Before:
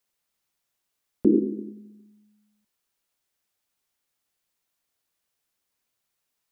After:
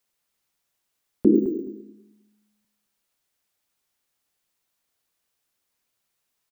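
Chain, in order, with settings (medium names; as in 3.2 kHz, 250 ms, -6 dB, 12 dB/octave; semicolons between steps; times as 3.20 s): on a send: feedback delay 212 ms, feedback 16%, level -11.5 dB; 1.35–1.96 s: on the sum: careless resampling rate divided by 2×, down filtered, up hold; trim +2 dB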